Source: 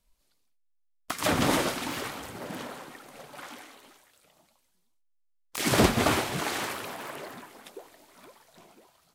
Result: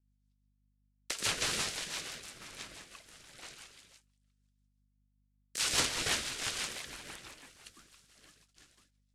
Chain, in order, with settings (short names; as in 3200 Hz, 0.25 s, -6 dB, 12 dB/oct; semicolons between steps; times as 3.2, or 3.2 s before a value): gate -57 dBFS, range -20 dB; weighting filter ITU-R 468; ring modulator 720 Hz; hum 50 Hz, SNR 35 dB; rotary speaker horn 6 Hz; gain -5.5 dB